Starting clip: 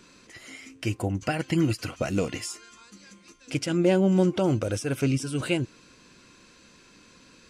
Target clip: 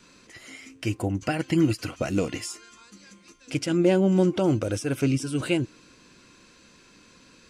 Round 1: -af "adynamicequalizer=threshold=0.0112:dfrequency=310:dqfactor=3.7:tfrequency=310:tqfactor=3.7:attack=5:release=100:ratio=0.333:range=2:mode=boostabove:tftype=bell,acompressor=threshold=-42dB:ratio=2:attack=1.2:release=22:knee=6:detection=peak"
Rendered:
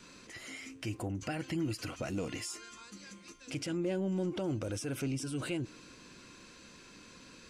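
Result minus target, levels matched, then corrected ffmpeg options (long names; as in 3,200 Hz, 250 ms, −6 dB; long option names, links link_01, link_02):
downward compressor: peak gain reduction +15 dB
-af "adynamicequalizer=threshold=0.0112:dfrequency=310:dqfactor=3.7:tfrequency=310:tqfactor=3.7:attack=5:release=100:ratio=0.333:range=2:mode=boostabove:tftype=bell"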